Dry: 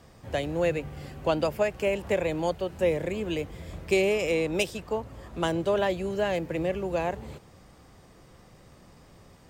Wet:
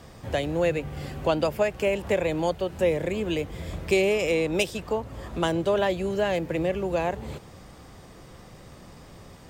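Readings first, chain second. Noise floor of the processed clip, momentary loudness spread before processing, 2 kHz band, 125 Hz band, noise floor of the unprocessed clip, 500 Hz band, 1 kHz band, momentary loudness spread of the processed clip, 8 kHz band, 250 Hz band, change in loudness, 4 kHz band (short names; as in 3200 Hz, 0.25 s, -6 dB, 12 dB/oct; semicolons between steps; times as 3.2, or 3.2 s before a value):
-48 dBFS, 8 LU, +2.0 dB, +3.0 dB, -54 dBFS, +2.0 dB, +2.0 dB, 8 LU, +2.0 dB, +2.5 dB, +2.0 dB, +2.5 dB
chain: bell 3500 Hz +2 dB 0.21 oct; in parallel at +1 dB: compressor, threshold -37 dBFS, peak gain reduction 16.5 dB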